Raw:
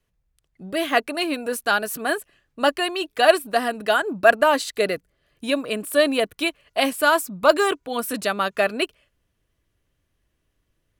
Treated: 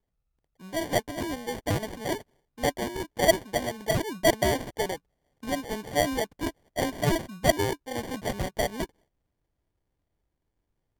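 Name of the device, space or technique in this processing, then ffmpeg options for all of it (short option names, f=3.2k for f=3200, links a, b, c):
crushed at another speed: -af "asetrate=55125,aresample=44100,acrusher=samples=27:mix=1:aa=0.000001,asetrate=35280,aresample=44100,volume=-7dB"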